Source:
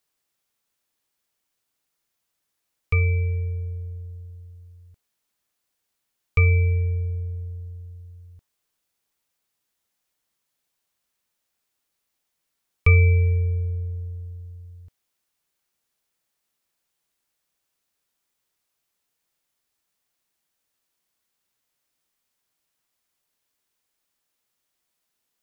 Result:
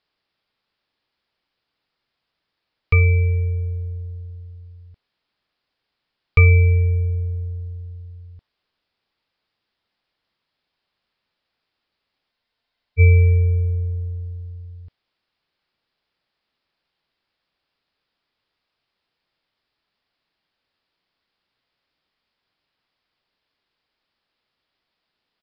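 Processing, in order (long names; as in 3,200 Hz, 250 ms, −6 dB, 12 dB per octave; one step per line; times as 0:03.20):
downsampling to 11,025 Hz
frozen spectrum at 0:12.32, 0.67 s
level +5.5 dB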